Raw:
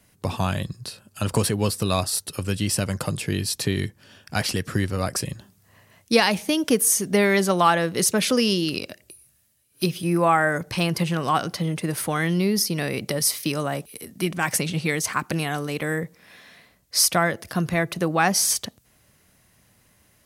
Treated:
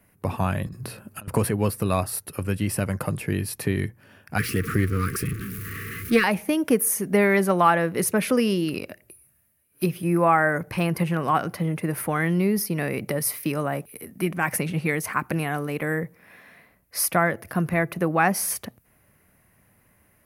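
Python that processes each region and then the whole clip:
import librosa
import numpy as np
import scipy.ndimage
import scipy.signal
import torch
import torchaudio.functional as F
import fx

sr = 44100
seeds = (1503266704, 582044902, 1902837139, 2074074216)

y = fx.chain(x, sr, fx.peak_eq(hz=260.0, db=4.5, octaves=1.8),
    fx.over_compress(threshold_db=-35.0, ratio=-1.0), at=(0.66, 1.28))
y = fx.chain(y, sr, fx.zero_step(step_db=-26.5),
    fx.brickwall_bandstop(low_hz=490.0, high_hz=1100.0),
    fx.doppler_dist(depth_ms=0.14), at=(4.38, 6.24))
y = fx.band_shelf(y, sr, hz=5100.0, db=-12.5, octaves=1.7)
y = fx.hum_notches(y, sr, base_hz=60, count=2)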